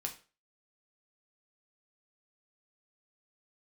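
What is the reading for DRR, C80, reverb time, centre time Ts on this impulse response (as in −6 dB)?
2.0 dB, 17.0 dB, 0.35 s, 13 ms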